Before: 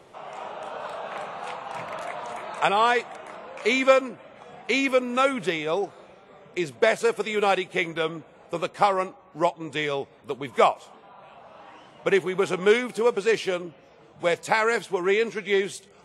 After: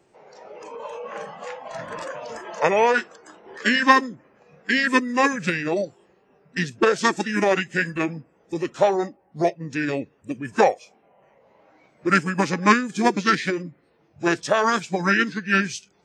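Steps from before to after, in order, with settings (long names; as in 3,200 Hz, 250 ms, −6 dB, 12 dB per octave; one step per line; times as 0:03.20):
high-shelf EQ 6,800 Hz +6 dB
noise reduction from a noise print of the clip's start 12 dB
formants moved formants −5 semitones
level +2.5 dB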